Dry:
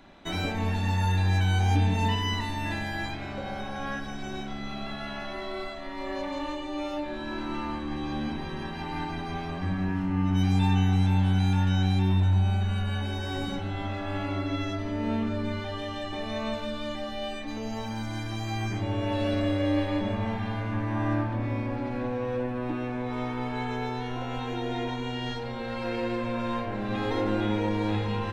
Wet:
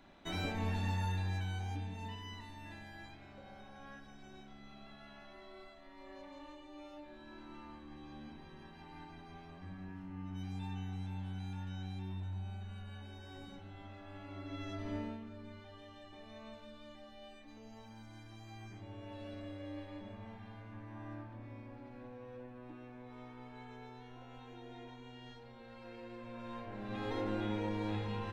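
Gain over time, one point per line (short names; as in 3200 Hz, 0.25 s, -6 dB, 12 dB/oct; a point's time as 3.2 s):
0.82 s -8 dB
1.88 s -19 dB
14.23 s -19 dB
14.96 s -8 dB
15.2 s -20 dB
26.06 s -20 dB
27.1 s -10 dB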